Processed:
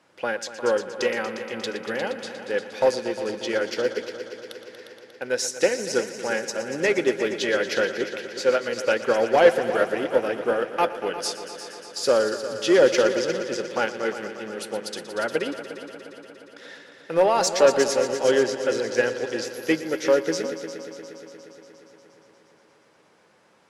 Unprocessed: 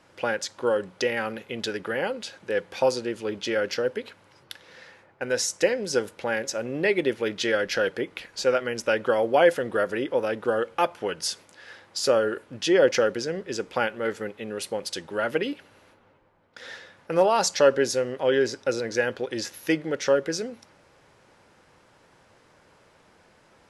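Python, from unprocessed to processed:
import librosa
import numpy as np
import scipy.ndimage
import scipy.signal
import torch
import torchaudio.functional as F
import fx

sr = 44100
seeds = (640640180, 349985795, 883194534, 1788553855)

p1 = scipy.signal.sosfilt(scipy.signal.butter(2, 150.0, 'highpass', fs=sr, output='sos'), x)
p2 = 10.0 ** (-12.5 / 20.0) * np.tanh(p1 / 10.0 ** (-12.5 / 20.0))
p3 = p2 + fx.echo_heads(p2, sr, ms=118, heads='all three', feedback_pct=68, wet_db=-13, dry=0)
p4 = fx.upward_expand(p3, sr, threshold_db=-32.0, expansion=1.5)
y = p4 * librosa.db_to_amplitude(5.5)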